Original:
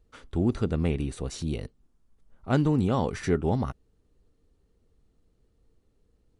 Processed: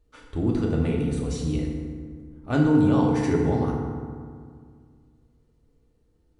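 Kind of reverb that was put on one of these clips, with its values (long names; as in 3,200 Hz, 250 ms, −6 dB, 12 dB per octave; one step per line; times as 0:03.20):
feedback delay network reverb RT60 2 s, low-frequency decay 1.25×, high-frequency decay 0.5×, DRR −2 dB
level −2.5 dB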